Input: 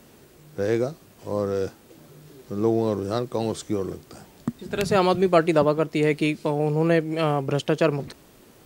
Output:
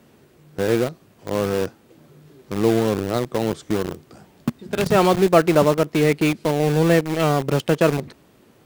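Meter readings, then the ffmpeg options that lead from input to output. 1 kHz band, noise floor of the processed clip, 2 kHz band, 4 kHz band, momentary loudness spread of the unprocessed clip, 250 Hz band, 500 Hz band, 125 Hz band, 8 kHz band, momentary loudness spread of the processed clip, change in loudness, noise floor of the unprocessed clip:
+3.5 dB, −54 dBFS, +4.0 dB, +4.5 dB, 14 LU, +4.0 dB, +3.0 dB, +4.5 dB, +7.5 dB, 14 LU, +3.5 dB, −53 dBFS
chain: -filter_complex "[0:a]highpass=frequency=110:poles=1,bass=frequency=250:gain=4,treble=frequency=4000:gain=-6,asplit=2[link_01][link_02];[link_02]acrusher=bits=3:mix=0:aa=0.000001,volume=-3dB[link_03];[link_01][link_03]amix=inputs=2:normalize=0,volume=-1.5dB"

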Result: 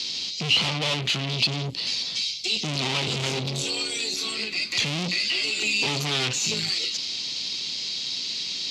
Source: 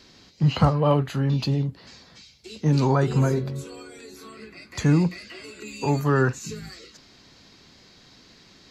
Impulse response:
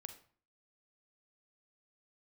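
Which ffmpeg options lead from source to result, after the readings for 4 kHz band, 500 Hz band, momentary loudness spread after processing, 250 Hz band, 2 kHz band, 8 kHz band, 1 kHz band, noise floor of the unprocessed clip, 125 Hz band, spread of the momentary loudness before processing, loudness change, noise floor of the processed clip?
+17.5 dB, −7.5 dB, 5 LU, −9.5 dB, +8.0 dB, +12.0 dB, −6.0 dB, −53 dBFS, −9.5 dB, 22 LU, −1.5 dB, −32 dBFS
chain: -filter_complex "[0:a]aeval=exprs='(tanh(56.2*val(0)+0.7)-tanh(0.7))/56.2':channel_layout=same,highpass=120,lowpass=4500,acrossover=split=3400[link_01][link_02];[link_02]acompressor=threshold=-59dB:ratio=4:attack=1:release=60[link_03];[link_01][link_03]amix=inputs=2:normalize=0,aexciter=amount=7.3:drive=8.9:freq=2500,asplit=2[link_04][link_05];[link_05]alimiter=level_in=3dB:limit=-24dB:level=0:latency=1,volume=-3dB,volume=-1.5dB[link_06];[link_04][link_06]amix=inputs=2:normalize=0,volume=4dB"

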